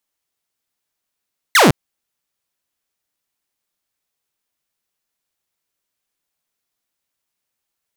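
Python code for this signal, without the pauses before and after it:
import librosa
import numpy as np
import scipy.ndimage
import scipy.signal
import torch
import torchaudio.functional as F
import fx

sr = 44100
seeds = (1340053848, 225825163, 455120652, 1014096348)

y = fx.laser_zap(sr, level_db=-5, start_hz=2200.0, end_hz=110.0, length_s=0.16, wave='saw')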